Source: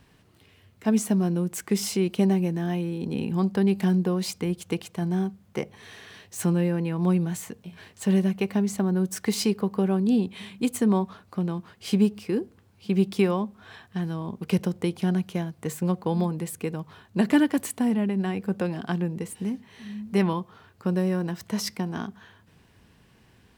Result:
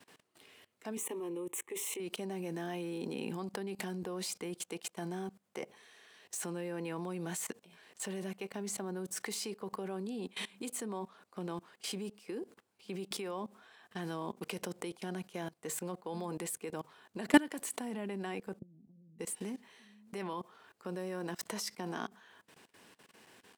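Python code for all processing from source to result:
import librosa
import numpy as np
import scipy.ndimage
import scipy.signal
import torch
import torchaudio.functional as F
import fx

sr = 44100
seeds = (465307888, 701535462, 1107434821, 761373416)

y = fx.chain(x, sr, fx.self_delay(depth_ms=0.064),
    fx.low_shelf(hz=280.0, db=6.0),
    fx.fixed_phaser(hz=1000.0, stages=8), at=(0.97, 2.0))
y = fx.chain(y, sr, fx.ladder_lowpass(hz=230.0, resonance_pct=40),
    fx.over_compress(threshold_db=-33.0, ratio=-0.5), at=(18.59, 19.19))
y = scipy.signal.sosfilt(scipy.signal.butter(2, 350.0, 'highpass', fs=sr, output='sos'), y)
y = fx.peak_eq(y, sr, hz=8500.0, db=5.0, octaves=0.66)
y = fx.level_steps(y, sr, step_db=21)
y = F.gain(torch.from_numpy(y), 3.0).numpy()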